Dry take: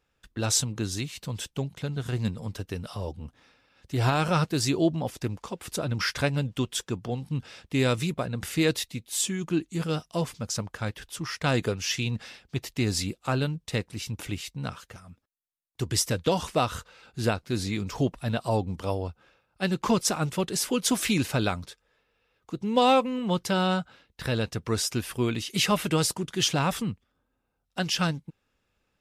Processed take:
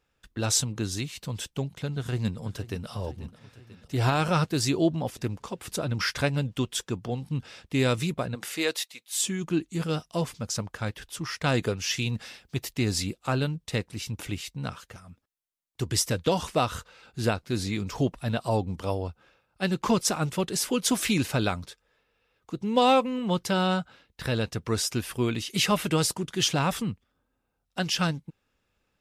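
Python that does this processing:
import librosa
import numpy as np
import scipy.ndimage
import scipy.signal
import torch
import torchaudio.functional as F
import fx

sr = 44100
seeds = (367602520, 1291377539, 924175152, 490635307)

y = fx.echo_throw(x, sr, start_s=1.94, length_s=0.95, ms=490, feedback_pct=65, wet_db=-16.0)
y = fx.highpass(y, sr, hz=fx.line((8.34, 270.0), (9.17, 1100.0)), slope=12, at=(8.34, 9.17), fade=0.02)
y = fx.high_shelf(y, sr, hz=8800.0, db=8.5, at=(11.96, 12.73))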